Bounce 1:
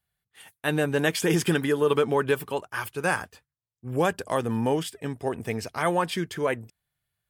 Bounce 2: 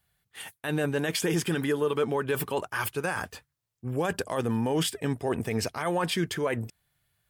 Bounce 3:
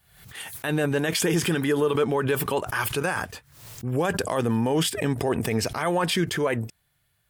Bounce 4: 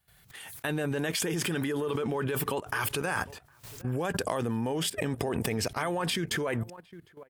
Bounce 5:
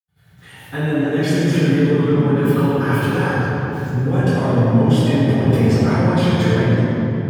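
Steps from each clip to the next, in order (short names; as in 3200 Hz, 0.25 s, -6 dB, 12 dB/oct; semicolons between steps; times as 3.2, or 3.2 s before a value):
reverse; compressor 6:1, threshold -30 dBFS, peak gain reduction 11.5 dB; reverse; limiter -26 dBFS, peak gain reduction 9 dB; gain +8 dB
backwards sustainer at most 76 dB/s; gain +3.5 dB
outdoor echo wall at 130 m, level -21 dB; level quantiser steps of 15 dB
reverb RT60 3.5 s, pre-delay 76 ms; gain -2.5 dB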